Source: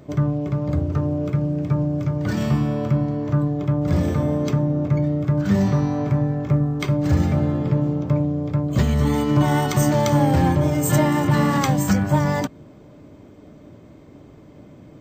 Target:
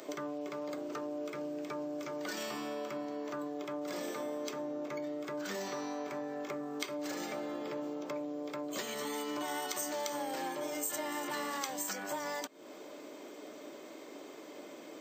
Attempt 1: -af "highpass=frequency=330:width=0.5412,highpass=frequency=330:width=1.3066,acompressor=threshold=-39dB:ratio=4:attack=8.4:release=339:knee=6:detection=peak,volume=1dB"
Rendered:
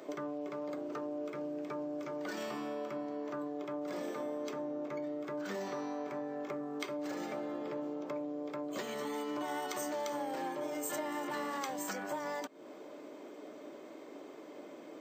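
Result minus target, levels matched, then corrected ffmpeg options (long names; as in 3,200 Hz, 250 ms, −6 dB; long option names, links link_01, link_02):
4,000 Hz band −5.0 dB
-af "highpass=frequency=330:width=0.5412,highpass=frequency=330:width=1.3066,highshelf=frequency=2500:gain=10.5,acompressor=threshold=-39dB:ratio=4:attack=8.4:release=339:knee=6:detection=peak,volume=1dB"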